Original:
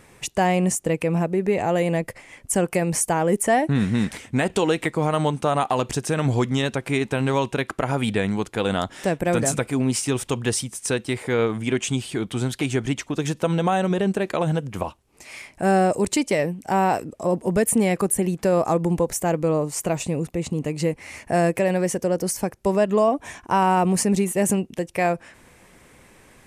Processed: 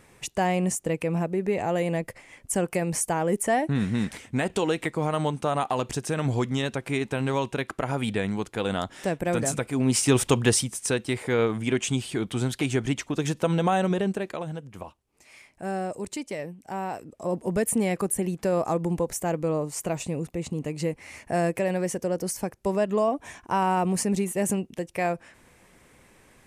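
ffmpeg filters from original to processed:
-af "volume=3.76,afade=t=in:st=9.73:d=0.48:silence=0.354813,afade=t=out:st=10.21:d=0.7:silence=0.473151,afade=t=out:st=13.85:d=0.62:silence=0.316228,afade=t=in:st=16.98:d=0.41:silence=0.446684"

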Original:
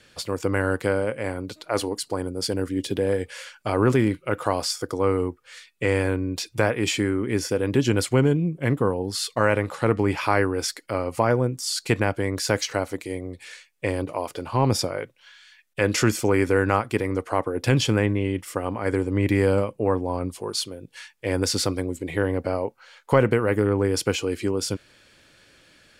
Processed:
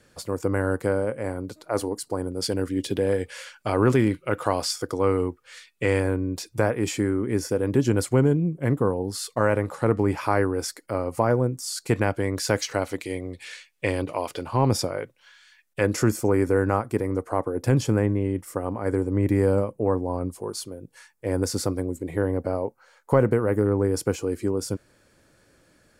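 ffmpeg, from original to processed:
-af "asetnsamples=n=441:p=0,asendcmd='2.32 equalizer g -1.5;6 equalizer g -10;11.93 equalizer g -3.5;12.82 equalizer g 3;14.43 equalizer g -5;15.86 equalizer g -14.5',equalizer=f=3100:t=o:w=1.6:g=-11.5"

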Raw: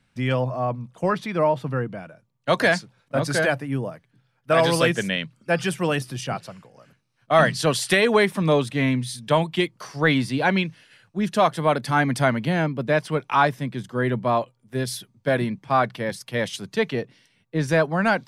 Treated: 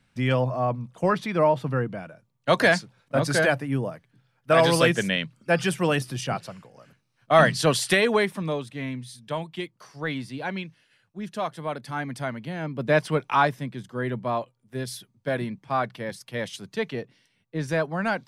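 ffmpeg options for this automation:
-af "volume=3.76,afade=t=out:st=7.74:d=0.85:silence=0.298538,afade=t=in:st=12.6:d=0.38:silence=0.266073,afade=t=out:st=12.98:d=0.79:silence=0.473151"

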